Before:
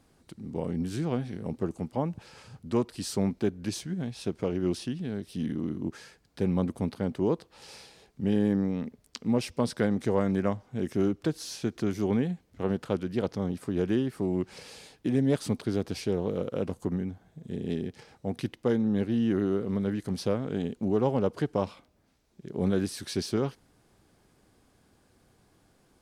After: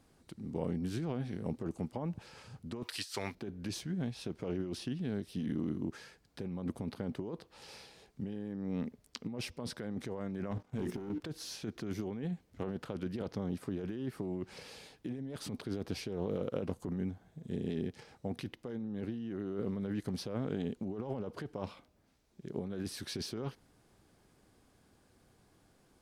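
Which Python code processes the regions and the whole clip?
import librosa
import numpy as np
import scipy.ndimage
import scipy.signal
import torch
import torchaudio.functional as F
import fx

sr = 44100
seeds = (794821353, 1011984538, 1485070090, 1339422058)

y = fx.chain(x, sr, fx.curve_eq(hz=(100.0, 170.0, 1900.0), db=(0, -18, 9)),
    fx.over_compress(threshold_db=-34.0, ratio=-0.5),
    fx.highpass(hz=160.0, slope=12), at=(2.83, 3.35))
y = fx.chain(y, sr, fx.hum_notches(base_hz=60, count=8),
    fx.leveller(passes=2),
    fx.level_steps(step_db=11), at=(10.51, 11.2))
y = fx.dynamic_eq(y, sr, hz=8000.0, q=1.1, threshold_db=-59.0, ratio=4.0, max_db=-5)
y = fx.over_compress(y, sr, threshold_db=-31.0, ratio=-1.0)
y = y * 10.0 ** (-6.0 / 20.0)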